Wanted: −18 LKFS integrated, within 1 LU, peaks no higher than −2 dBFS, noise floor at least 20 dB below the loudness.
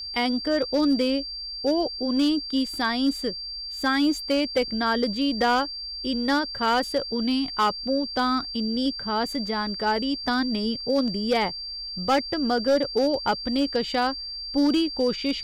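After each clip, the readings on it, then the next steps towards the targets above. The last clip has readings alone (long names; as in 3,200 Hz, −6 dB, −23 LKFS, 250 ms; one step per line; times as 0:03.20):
share of clipped samples 0.8%; peaks flattened at −15.5 dBFS; interfering tone 4,700 Hz; level of the tone −32 dBFS; integrated loudness −24.5 LKFS; sample peak −15.5 dBFS; target loudness −18.0 LKFS
→ clipped peaks rebuilt −15.5 dBFS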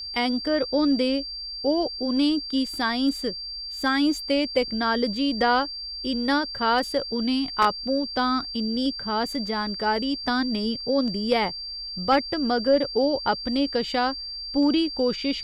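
share of clipped samples 0.0%; interfering tone 4,700 Hz; level of the tone −32 dBFS
→ notch filter 4,700 Hz, Q 30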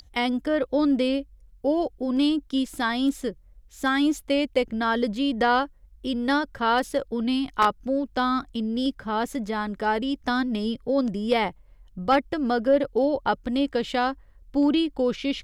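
interfering tone none found; integrated loudness −25.0 LKFS; sample peak −6.0 dBFS; target loudness −18.0 LKFS
→ level +7 dB
brickwall limiter −2 dBFS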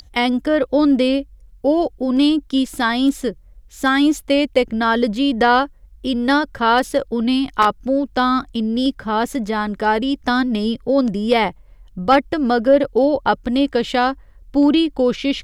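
integrated loudness −18.0 LKFS; sample peak −2.0 dBFS; background noise floor −47 dBFS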